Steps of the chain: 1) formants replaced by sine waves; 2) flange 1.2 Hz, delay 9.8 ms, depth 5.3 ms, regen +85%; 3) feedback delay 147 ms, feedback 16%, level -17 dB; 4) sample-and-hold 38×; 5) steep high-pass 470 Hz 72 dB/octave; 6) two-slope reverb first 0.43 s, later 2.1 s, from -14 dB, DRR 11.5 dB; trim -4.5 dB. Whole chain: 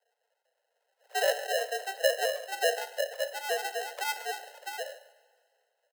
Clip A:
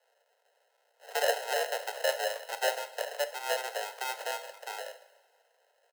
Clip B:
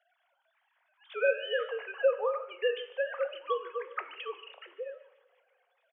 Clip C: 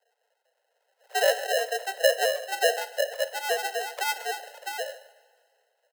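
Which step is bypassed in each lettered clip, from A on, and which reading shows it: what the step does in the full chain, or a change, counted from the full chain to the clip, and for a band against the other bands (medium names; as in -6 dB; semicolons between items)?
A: 1, loudness change -1.5 LU; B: 4, crest factor change -6.0 dB; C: 2, loudness change +4.0 LU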